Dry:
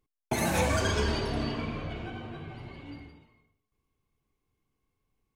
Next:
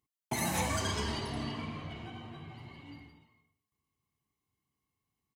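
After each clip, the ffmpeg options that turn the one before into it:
-af "highpass=90,highshelf=f=4.3k:g=6,aecho=1:1:1:0.42,volume=-6dB"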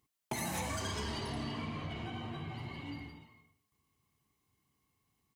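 -filter_complex "[0:a]asplit=2[a][b];[b]asoftclip=type=hard:threshold=-35.5dB,volume=-6dB[c];[a][c]amix=inputs=2:normalize=0,acompressor=threshold=-42dB:ratio=3,volume=3.5dB"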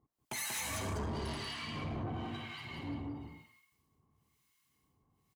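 -filter_complex "[0:a]acrossover=split=1200[a][b];[a]aeval=exprs='val(0)*(1-1/2+1/2*cos(2*PI*1*n/s))':c=same[c];[b]aeval=exprs='val(0)*(1-1/2-1/2*cos(2*PI*1*n/s))':c=same[d];[c][d]amix=inputs=2:normalize=0,aecho=1:1:186:0.631,asoftclip=type=tanh:threshold=-39dB,volume=6dB"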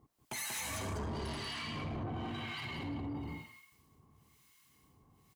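-af "alimiter=level_in=19.5dB:limit=-24dB:level=0:latency=1:release=16,volume=-19.5dB,volume=9dB"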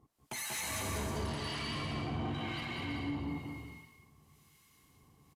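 -filter_complex "[0:a]asplit=2[a][b];[b]aecho=0:1:200|320|392|435.2|461.1:0.631|0.398|0.251|0.158|0.1[c];[a][c]amix=inputs=2:normalize=0,aresample=32000,aresample=44100"

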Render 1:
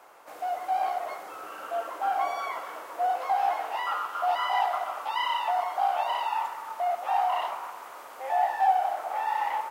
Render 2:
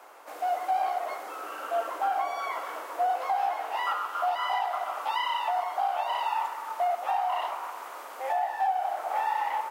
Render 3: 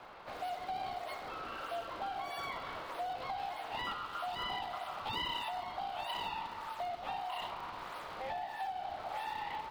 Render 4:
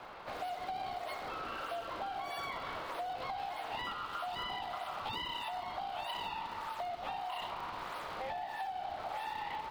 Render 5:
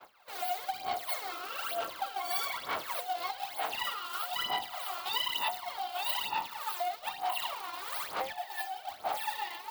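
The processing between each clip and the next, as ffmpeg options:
-af "alimiter=limit=-21.5dB:level=0:latency=1:release=480,highpass=f=230:w=0.5412,highpass=f=230:w=1.3066,volume=2.5dB"
-filter_complex "[0:a]equalizer=f=4.2k:t=o:w=0.97:g=11,acrossover=split=300|3000[a][b][c];[b]acompressor=threshold=-40dB:ratio=3[d];[a][d][c]amix=inputs=3:normalize=0,acrossover=split=760|1500|4000[e][f][g][h];[h]acrusher=samples=29:mix=1:aa=0.000001:lfo=1:lforange=46.4:lforate=1.6[i];[e][f][g][i]amix=inputs=4:normalize=0,volume=-2dB"
-af "acompressor=threshold=-39dB:ratio=6,volume=3dB"
-af "aphaser=in_gain=1:out_gain=1:delay=2.9:decay=0.69:speed=1.1:type=sinusoidal,aemphasis=mode=production:type=riaa,agate=range=-33dB:threshold=-34dB:ratio=3:detection=peak"

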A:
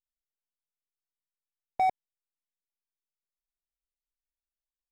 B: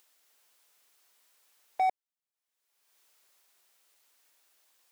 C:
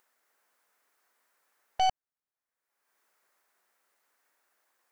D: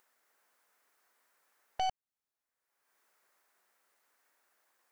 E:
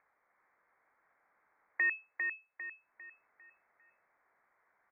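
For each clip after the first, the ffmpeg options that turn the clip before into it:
-af "highpass=430,acompressor=mode=upward:threshold=-45dB:ratio=2.5,volume=-1dB"
-af "highshelf=f=2.3k:t=q:w=1.5:g=-8.5,aeval=exprs='0.106*(cos(1*acos(clip(val(0)/0.106,-1,1)))-cos(1*PI/2))+0.0237*(cos(6*acos(clip(val(0)/0.106,-1,1)))-cos(6*PI/2))':c=same"
-af "acompressor=threshold=-42dB:ratio=1.5"
-filter_complex "[0:a]asplit=2[a][b];[b]aecho=0:1:400|800|1200|1600|2000:0.562|0.214|0.0812|0.0309|0.0117[c];[a][c]amix=inputs=2:normalize=0,lowpass=f=2.2k:t=q:w=0.5098,lowpass=f=2.2k:t=q:w=0.6013,lowpass=f=2.2k:t=q:w=0.9,lowpass=f=2.2k:t=q:w=2.563,afreqshift=-2600,volume=2dB"

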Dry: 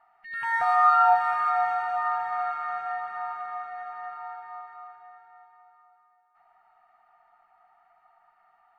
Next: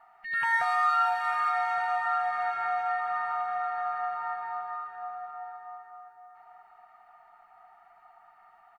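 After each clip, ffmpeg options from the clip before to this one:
-filter_complex "[0:a]asplit=2[a][b];[b]adelay=1166,volume=-7dB,highshelf=f=4k:g=-26.2[c];[a][c]amix=inputs=2:normalize=0,acrossover=split=2000[d][e];[d]acompressor=threshold=-33dB:ratio=6[f];[f][e]amix=inputs=2:normalize=0,volume=5dB"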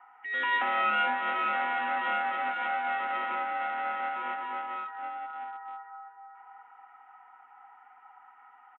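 -af "aresample=8000,aeval=exprs='clip(val(0),-1,0.0119)':c=same,aresample=44100,highpass=f=180:t=q:w=0.5412,highpass=f=180:t=q:w=1.307,lowpass=f=3.1k:t=q:w=0.5176,lowpass=f=3.1k:t=q:w=0.7071,lowpass=f=3.1k:t=q:w=1.932,afreqshift=60,volume=2dB"

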